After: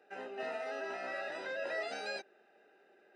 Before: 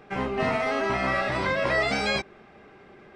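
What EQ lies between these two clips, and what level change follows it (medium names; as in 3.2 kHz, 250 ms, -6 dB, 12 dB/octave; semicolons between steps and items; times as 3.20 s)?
boxcar filter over 40 samples; high-pass 380 Hz 12 dB/octave; differentiator; +15.0 dB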